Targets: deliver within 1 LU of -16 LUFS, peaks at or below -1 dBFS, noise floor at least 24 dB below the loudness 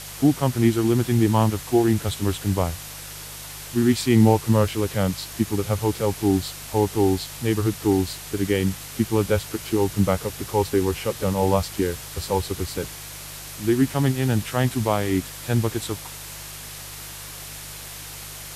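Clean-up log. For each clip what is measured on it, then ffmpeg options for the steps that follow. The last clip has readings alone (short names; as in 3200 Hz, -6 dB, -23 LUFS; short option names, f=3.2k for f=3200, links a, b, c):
hum 50 Hz; harmonics up to 150 Hz; hum level -44 dBFS; noise floor -38 dBFS; noise floor target -47 dBFS; loudness -23.0 LUFS; peak -3.5 dBFS; loudness target -16.0 LUFS
-> -af "bandreject=f=50:t=h:w=4,bandreject=f=100:t=h:w=4,bandreject=f=150:t=h:w=4"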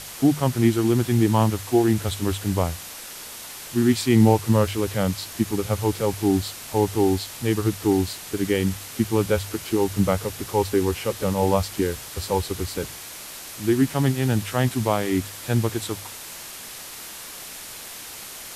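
hum none; noise floor -38 dBFS; noise floor target -47 dBFS
-> -af "afftdn=nr=9:nf=-38"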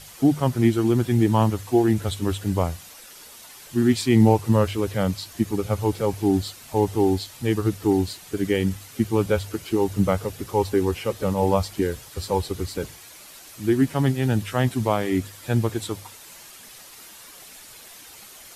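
noise floor -45 dBFS; noise floor target -47 dBFS
-> -af "afftdn=nr=6:nf=-45"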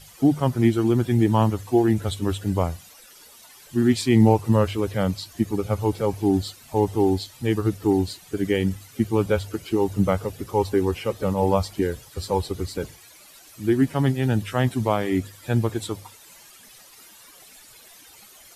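noise floor -49 dBFS; loudness -23.0 LUFS; peak -4.0 dBFS; loudness target -16.0 LUFS
-> -af "volume=7dB,alimiter=limit=-1dB:level=0:latency=1"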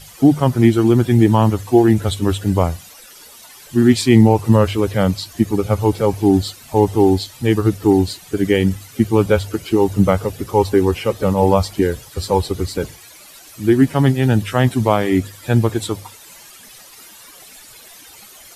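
loudness -16.5 LUFS; peak -1.0 dBFS; noise floor -42 dBFS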